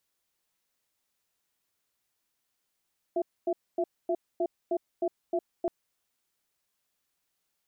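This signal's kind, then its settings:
tone pair in a cadence 354 Hz, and 669 Hz, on 0.06 s, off 0.25 s, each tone −27.5 dBFS 2.52 s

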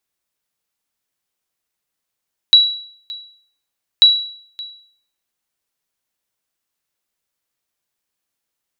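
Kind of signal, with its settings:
ping with an echo 3,910 Hz, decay 0.57 s, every 1.49 s, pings 2, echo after 0.57 s, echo −21.5 dB −2 dBFS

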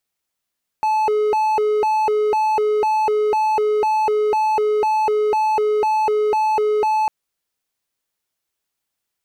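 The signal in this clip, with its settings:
siren hi-lo 424–866 Hz 2 per second triangle −13 dBFS 6.25 s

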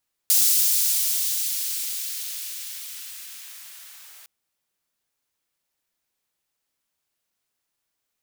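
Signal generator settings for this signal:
filter sweep on noise white, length 3.96 s highpass, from 5,400 Hz, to 820 Hz, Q 0.73, linear, gain ramp −31 dB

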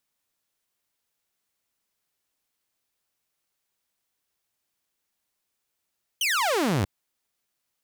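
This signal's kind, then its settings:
single falling chirp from 3,200 Hz, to 84 Hz, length 0.64 s saw, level −19 dB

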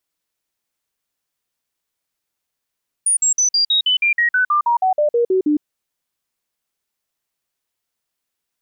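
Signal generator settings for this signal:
stepped sweep 9,540 Hz down, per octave 3, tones 16, 0.11 s, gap 0.05 s −12.5 dBFS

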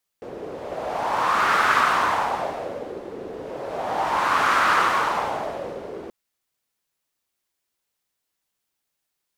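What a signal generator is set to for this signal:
wind from filtered noise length 5.88 s, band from 420 Hz, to 1,300 Hz, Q 3.1, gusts 2, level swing 16.5 dB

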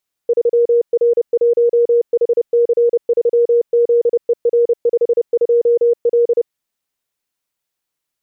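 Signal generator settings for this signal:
Morse code "3R1HC3ZER52L" 30 words per minute 473 Hz −9 dBFS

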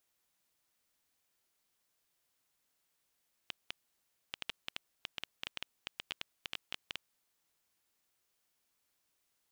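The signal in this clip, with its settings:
Geiger counter clicks 7.4 per second −20 dBFS 3.65 s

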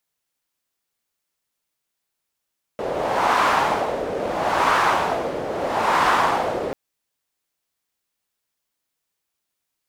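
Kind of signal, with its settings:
wind from filtered noise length 3.94 s, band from 500 Hz, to 1,100 Hz, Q 2.2, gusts 3, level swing 9 dB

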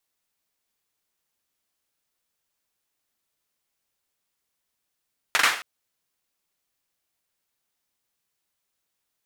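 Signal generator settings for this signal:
synth clap length 0.27 s, bursts 3, apart 42 ms, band 1,600 Hz, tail 0.44 s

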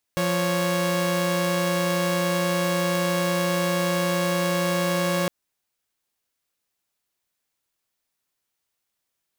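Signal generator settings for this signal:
held notes F3/C#5 saw, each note −21.5 dBFS 5.11 s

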